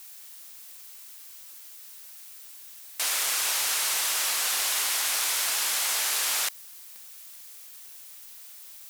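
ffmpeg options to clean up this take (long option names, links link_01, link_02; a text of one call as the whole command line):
ffmpeg -i in.wav -af "adeclick=threshold=4,afftdn=noise_reduction=30:noise_floor=-46" out.wav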